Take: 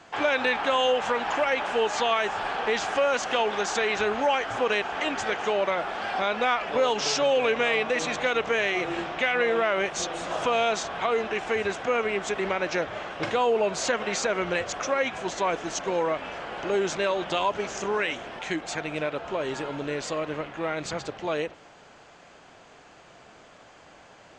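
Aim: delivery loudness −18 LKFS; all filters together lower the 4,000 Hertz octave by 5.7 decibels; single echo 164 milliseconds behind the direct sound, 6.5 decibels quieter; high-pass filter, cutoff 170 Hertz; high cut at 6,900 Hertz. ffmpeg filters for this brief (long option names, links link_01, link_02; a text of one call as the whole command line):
ffmpeg -i in.wav -af "highpass=170,lowpass=6900,equalizer=frequency=4000:width_type=o:gain=-8,aecho=1:1:164:0.473,volume=8.5dB" out.wav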